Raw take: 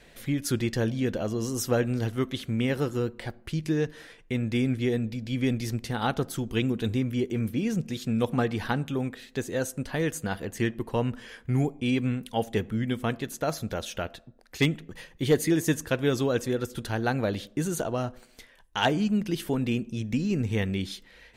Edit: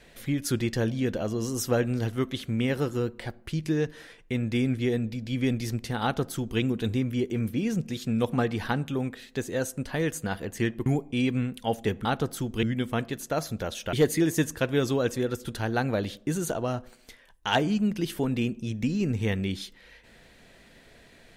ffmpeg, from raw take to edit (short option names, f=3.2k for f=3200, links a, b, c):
-filter_complex "[0:a]asplit=5[a][b][c][d][e];[a]atrim=end=10.862[f];[b]atrim=start=11.548:end=12.742[g];[c]atrim=start=6.018:end=6.602[h];[d]atrim=start=12.738:end=14.042[i];[e]atrim=start=15.228[j];[f][g]acrossfade=d=0.004:c1=hsin:c2=hsin[k];[k][h]acrossfade=d=0.004:c1=hsin:c2=hsin[l];[l][i]acrossfade=d=0.004:c1=hsin:c2=hsin[m];[m][j]acrossfade=d=0.004:c1=hsin:c2=hsin"